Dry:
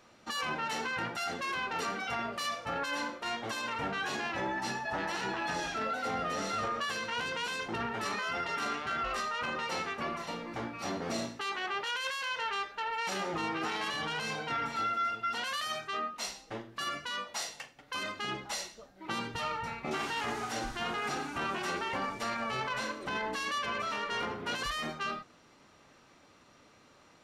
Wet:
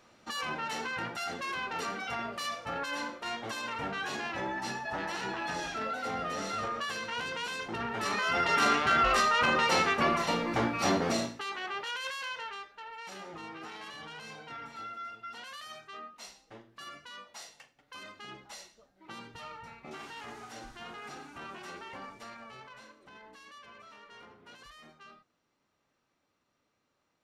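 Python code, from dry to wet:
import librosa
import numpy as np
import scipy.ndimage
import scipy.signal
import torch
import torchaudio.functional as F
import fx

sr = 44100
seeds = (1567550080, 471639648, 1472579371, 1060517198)

y = fx.gain(x, sr, db=fx.line((7.78, -1.0), (8.61, 9.0), (10.94, 9.0), (11.45, -2.0), (12.25, -2.0), (12.68, -10.0), (22.08, -10.0), (22.94, -18.0)))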